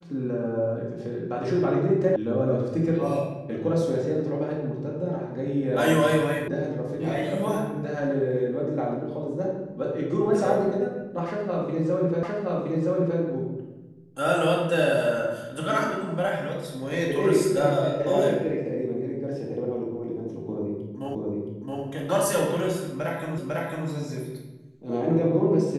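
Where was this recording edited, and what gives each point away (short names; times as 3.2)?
2.16 sound cut off
6.48 sound cut off
12.23 repeat of the last 0.97 s
21.15 repeat of the last 0.67 s
23.38 repeat of the last 0.5 s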